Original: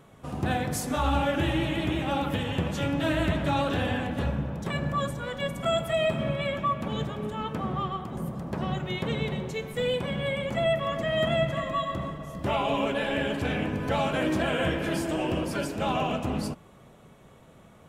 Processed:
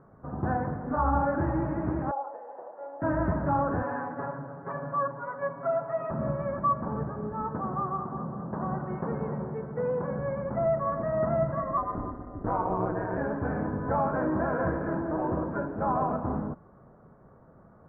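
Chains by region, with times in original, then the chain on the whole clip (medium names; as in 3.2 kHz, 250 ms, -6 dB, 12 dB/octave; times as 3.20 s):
2.11–3.02 s: high-pass 600 Hz 24 dB/octave + high-order bell 2.5 kHz -16 dB 2.6 oct
3.82–6.11 s: high-pass 630 Hz 6 dB/octave + comb 7.2 ms, depth 88%
7.58–10.19 s: high-pass 140 Hz 6 dB/octave + bucket-brigade echo 203 ms, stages 2048, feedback 62%, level -8 dB
11.77–13.18 s: peaking EQ 220 Hz +8 dB 0.56 oct + ring modulator 97 Hz
whole clip: steep low-pass 1.6 kHz 48 dB/octave; dynamic bell 980 Hz, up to +6 dB, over -44 dBFS, Q 2.9; trim -1.5 dB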